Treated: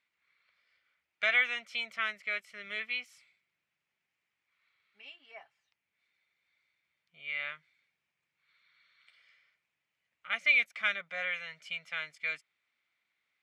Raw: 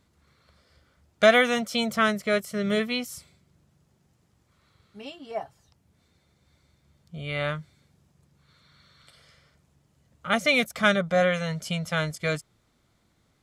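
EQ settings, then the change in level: band-pass 2300 Hz, Q 3.5; 0.0 dB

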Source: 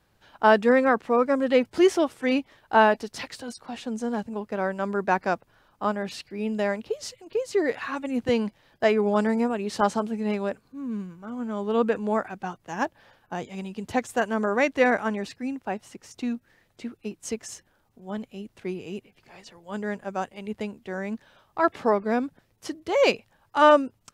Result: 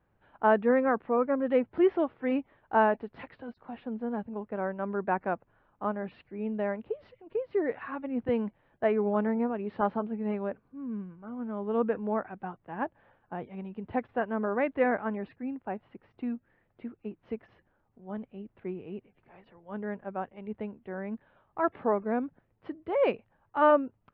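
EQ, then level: Gaussian blur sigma 3.9 samples; -4.5 dB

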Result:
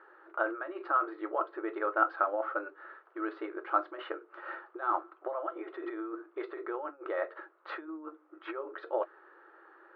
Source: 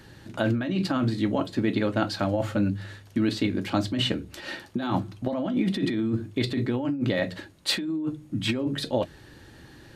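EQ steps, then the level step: brick-wall FIR high-pass 320 Hz; synth low-pass 1300 Hz, resonance Q 6.4; air absorption 190 m; -6.5 dB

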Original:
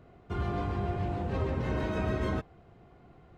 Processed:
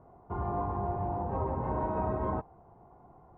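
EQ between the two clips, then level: synth low-pass 920 Hz, resonance Q 4.9; -3.5 dB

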